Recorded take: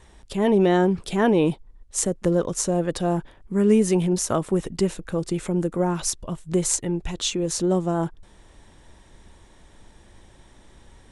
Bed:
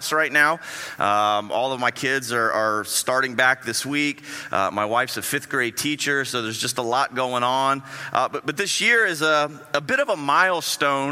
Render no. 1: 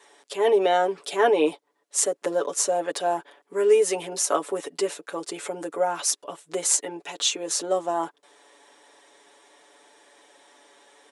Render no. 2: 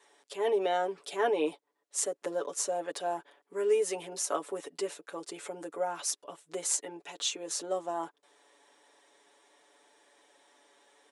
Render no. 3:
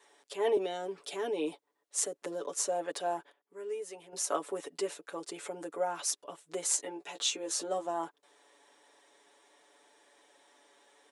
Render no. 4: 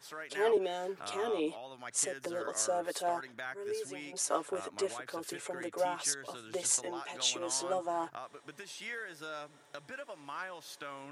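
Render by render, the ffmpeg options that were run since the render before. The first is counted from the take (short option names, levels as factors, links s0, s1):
-af "highpass=f=370:w=0.5412,highpass=f=370:w=1.3066,aecho=1:1:7:0.81"
-af "volume=0.376"
-filter_complex "[0:a]asettb=1/sr,asplit=3[s0][s1][s2];[s0]atrim=end=0.574[s3];[s1]atrim=start=0.57:end=2.47,asetpts=PTS-STARTPTS,afade=t=in:d=0.004:c=qsin,afade=t=out:st=1.896:d=0.004:c=qsin,acrossover=split=390|3000[s4][s5][s6];[s5]acompressor=threshold=0.0112:ratio=6:attack=3.2:release=140:knee=2.83:detection=peak[s7];[s4][s7][s6]amix=inputs=3:normalize=0[s8];[s2]atrim=start=2.466[s9];[s3][s8]acrossfade=d=0.004:c1=hsin:c2=qsin[s10];[s10][s9]acrossfade=d=0.004:c1=qsin:c2=hsin,asettb=1/sr,asplit=3[s11][s12][s13];[s11]atrim=end=6.784[s14];[s12]atrim=start=6.78:end=7.87,asetpts=PTS-STARTPTS,afade=t=in:d=0.004:c=qsin,afade=t=out:st=1.086:d=0.004:c=qsin,asplit=2[s15][s16];[s16]adelay=15,volume=0.501[s17];[s15][s17]amix=inputs=2:normalize=0,atrim=end_sample=48069[s18];[s13]atrim=start=7.866[s19];[s14][s18]acrossfade=d=0.004:c1=hsin:c2=qsin[s20];[s20][s19]acrossfade=d=0.004:c1=qsin:c2=hsin,asplit=3[s21][s22][s23];[s21]atrim=end=3.32,asetpts=PTS-STARTPTS,afade=t=out:st=2.99:d=0.33:c=log:silence=0.266073[s24];[s22]atrim=start=3.32:end=4.13,asetpts=PTS-STARTPTS,volume=0.266[s25];[s23]atrim=start=4.13,asetpts=PTS-STARTPTS,afade=t=in:d=0.33:c=log:silence=0.266073[s26];[s24][s25][s26]concat=n=3:v=0:a=1"
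-filter_complex "[1:a]volume=0.0631[s0];[0:a][s0]amix=inputs=2:normalize=0"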